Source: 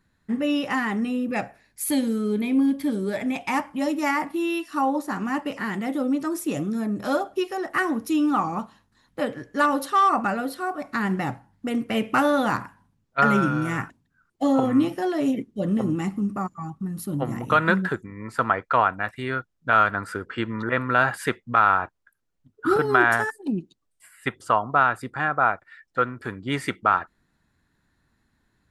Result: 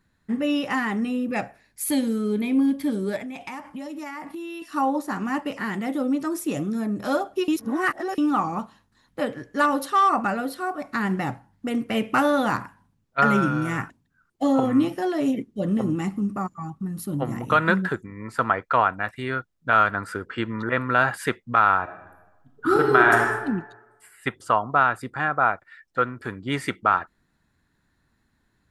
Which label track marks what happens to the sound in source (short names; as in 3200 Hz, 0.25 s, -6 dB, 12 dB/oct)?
3.160000	4.620000	compressor 12:1, threshold -31 dBFS
7.480000	8.180000	reverse
21.820000	23.350000	reverb throw, RT60 1.1 s, DRR 2 dB